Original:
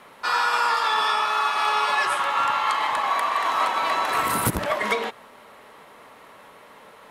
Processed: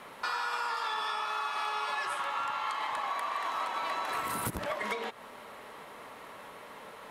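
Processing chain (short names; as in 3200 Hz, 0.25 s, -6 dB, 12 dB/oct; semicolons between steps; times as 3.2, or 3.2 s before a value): compressor 4:1, threshold -33 dBFS, peak gain reduction 13 dB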